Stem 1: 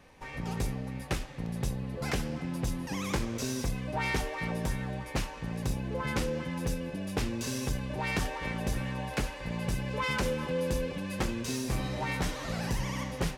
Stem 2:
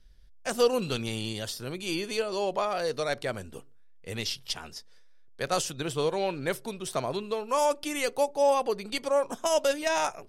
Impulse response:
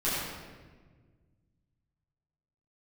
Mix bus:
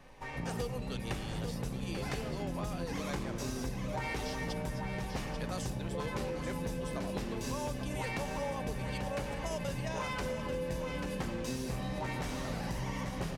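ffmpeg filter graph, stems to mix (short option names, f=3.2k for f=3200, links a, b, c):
-filter_complex "[0:a]equalizer=f=660:t=o:w=1.7:g=3,volume=-3dB,asplit=3[a][b][c];[b]volume=-13.5dB[d];[c]volume=-6dB[e];[1:a]volume=-8.5dB,asplit=2[f][g];[g]volume=-10dB[h];[2:a]atrim=start_sample=2205[i];[d][i]afir=irnorm=-1:irlink=0[j];[e][h]amix=inputs=2:normalize=0,aecho=0:1:839:1[k];[a][f][j][k]amix=inputs=4:normalize=0,acompressor=threshold=-34dB:ratio=4"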